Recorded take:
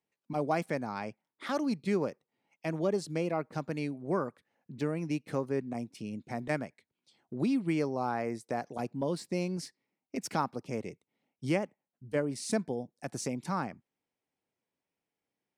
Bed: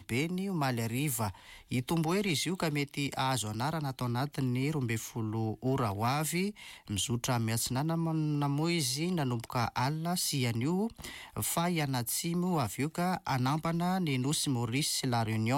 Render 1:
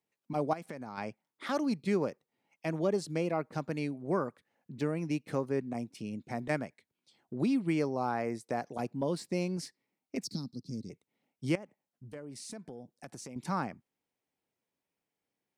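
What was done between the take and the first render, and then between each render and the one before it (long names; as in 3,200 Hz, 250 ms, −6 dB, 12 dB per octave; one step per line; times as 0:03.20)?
0:00.53–0:00.98: downward compressor 8 to 1, threshold −37 dBFS
0:10.24–0:10.90: drawn EQ curve 260 Hz 0 dB, 410 Hz −13 dB, 780 Hz −28 dB, 1,500 Hz −28 dB, 2,900 Hz −25 dB, 4,200 Hz +8 dB, 6,900 Hz −5 dB, 10,000 Hz −7 dB
0:11.55–0:13.36: downward compressor 4 to 1, threshold −43 dBFS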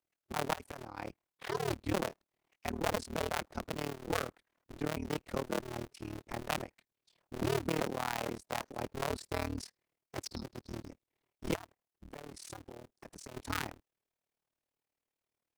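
sub-harmonics by changed cycles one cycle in 2, inverted
amplitude modulation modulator 38 Hz, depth 95%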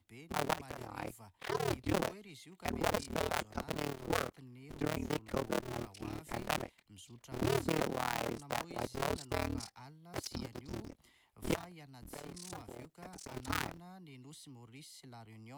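mix in bed −22.5 dB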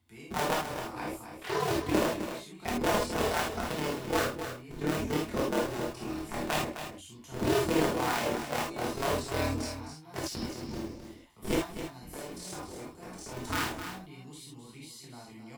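single-tap delay 260 ms −9.5 dB
reverb whose tail is shaped and stops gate 100 ms flat, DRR −4.5 dB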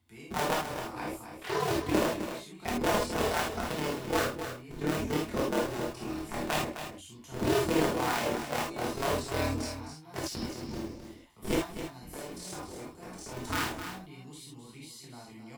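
no processing that can be heard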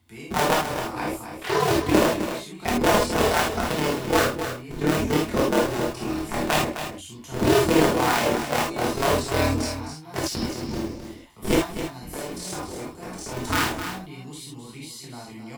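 level +8.5 dB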